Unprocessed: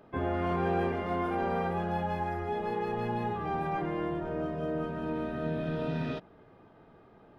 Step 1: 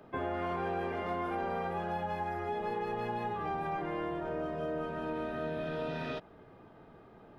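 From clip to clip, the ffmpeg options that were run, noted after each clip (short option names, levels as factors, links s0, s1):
-filter_complex "[0:a]acrossover=split=86|380[s0][s1][s2];[s0]acompressor=threshold=0.00158:ratio=4[s3];[s1]acompressor=threshold=0.00501:ratio=4[s4];[s2]acompressor=threshold=0.0178:ratio=4[s5];[s3][s4][s5]amix=inputs=3:normalize=0,volume=1.19"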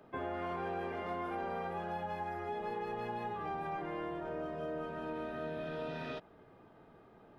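-af "lowshelf=f=150:g=-3,volume=0.668"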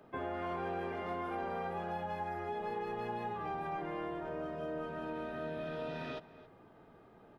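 -filter_complex "[0:a]asplit=2[s0][s1];[s1]adelay=274.1,volume=0.141,highshelf=f=4000:g=-6.17[s2];[s0][s2]amix=inputs=2:normalize=0"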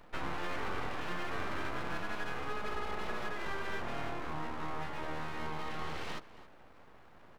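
-af "aeval=exprs='abs(val(0))':c=same,volume=1.58"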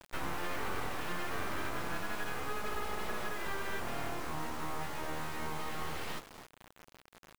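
-af "acrusher=bits=5:dc=4:mix=0:aa=0.000001"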